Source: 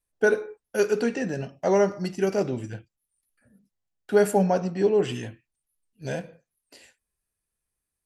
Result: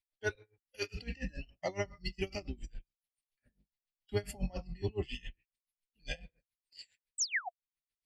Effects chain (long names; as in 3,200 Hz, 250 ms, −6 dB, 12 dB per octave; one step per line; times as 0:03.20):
sub-octave generator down 2 octaves, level +4 dB
flat-topped bell 3,100 Hz +14 dB
in parallel at −10 dB: soft clipping −13 dBFS, distortion −15 dB
on the sum: sound drawn into the spectrogram fall, 0:07.18–0:07.49, 670–8,400 Hz −16 dBFS
noise reduction from a noise print of the clip's start 16 dB
downward compressor 2 to 1, threshold −43 dBFS, peak gain reduction 17 dB
tremolo with a sine in dB 7.2 Hz, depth 24 dB
level +1.5 dB